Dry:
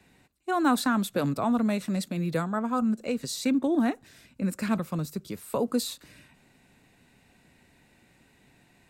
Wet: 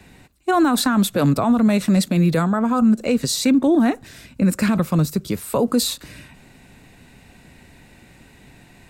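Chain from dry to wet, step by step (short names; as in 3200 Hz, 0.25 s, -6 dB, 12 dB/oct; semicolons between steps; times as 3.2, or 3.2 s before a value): low shelf 89 Hz +8.5 dB; maximiser +20 dB; gain -8.5 dB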